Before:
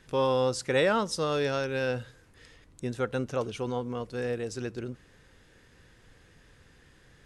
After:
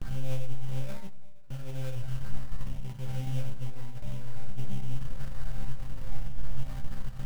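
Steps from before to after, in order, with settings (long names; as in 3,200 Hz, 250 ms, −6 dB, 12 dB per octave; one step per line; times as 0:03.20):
sign of each sample alone
spectral tilt −4.5 dB per octave
phaser with its sweep stopped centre 1,800 Hz, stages 8
resonators tuned to a chord C3 fifth, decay 0.58 s
transient designer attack −2 dB, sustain −6 dB
noise gate with hold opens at −33 dBFS
comb and all-pass reverb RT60 0.91 s, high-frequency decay 0.75×, pre-delay 100 ms, DRR 18 dB
sample-rate reduction 3,000 Hz, jitter 20%
level +4.5 dB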